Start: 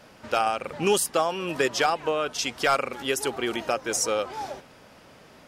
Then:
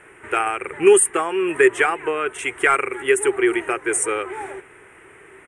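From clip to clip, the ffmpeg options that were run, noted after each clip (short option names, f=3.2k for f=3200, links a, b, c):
-af "firequalizer=gain_entry='entry(110,0);entry(230,-10);entry(380,15);entry(550,-7);entry(840,1);entry(2000,13);entry(4700,-26);entry(8800,14);entry(13000,-16)':delay=0.05:min_phase=1"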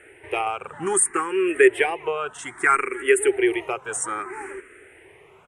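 -filter_complex "[0:a]asplit=2[a][b];[b]afreqshift=0.62[c];[a][c]amix=inputs=2:normalize=1"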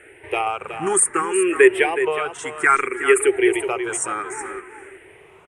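-af "aecho=1:1:370:0.316,volume=2.5dB"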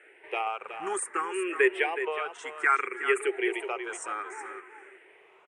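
-af "highpass=450,lowpass=5.6k,volume=-7.5dB"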